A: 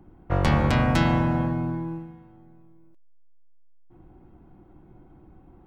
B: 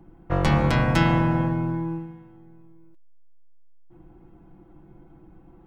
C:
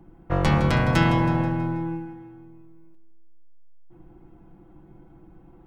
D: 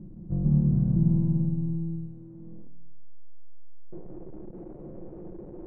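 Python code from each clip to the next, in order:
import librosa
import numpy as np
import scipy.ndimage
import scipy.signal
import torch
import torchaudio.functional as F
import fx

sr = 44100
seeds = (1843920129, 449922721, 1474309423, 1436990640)

y1 = x + 0.44 * np.pad(x, (int(6.0 * sr / 1000.0), 0))[:len(x)]
y2 = fx.echo_feedback(y1, sr, ms=161, feedback_pct=49, wet_db=-12.5)
y3 = fx.delta_mod(y2, sr, bps=16000, step_db=-32.0)
y3 = fx.filter_sweep_lowpass(y3, sr, from_hz=200.0, to_hz=460.0, start_s=2.05, end_s=3.78, q=1.9)
y3 = fx.room_shoebox(y3, sr, seeds[0], volume_m3=1900.0, walls='furnished', distance_m=0.93)
y3 = y3 * librosa.db_to_amplitude(-6.0)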